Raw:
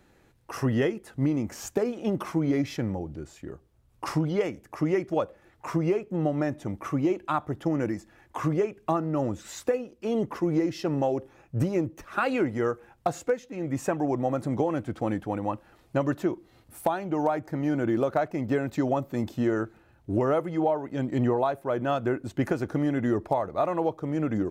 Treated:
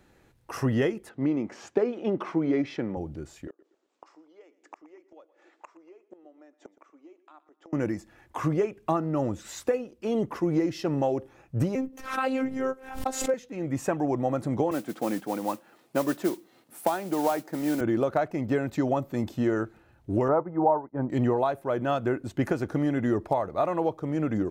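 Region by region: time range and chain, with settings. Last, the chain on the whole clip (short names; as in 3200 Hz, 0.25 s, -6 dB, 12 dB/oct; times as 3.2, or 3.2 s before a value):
1.09–2.97 BPF 200–3600 Hz + bell 380 Hz +3.5 dB 0.44 oct
3.47–7.73 Chebyshev band-pass 290–7500 Hz, order 4 + flipped gate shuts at -31 dBFS, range -26 dB + feedback echo 0.119 s, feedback 36%, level -18 dB
11.75–13.34 short-mantissa float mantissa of 8-bit + robotiser 263 Hz + backwards sustainer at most 90 dB/s
14.71–17.81 HPF 180 Hz 24 dB/oct + modulation noise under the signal 17 dB
20.28–21.1 LPF 1500 Hz 24 dB/oct + expander -29 dBFS + bell 920 Hz +8.5 dB 0.46 oct
whole clip: dry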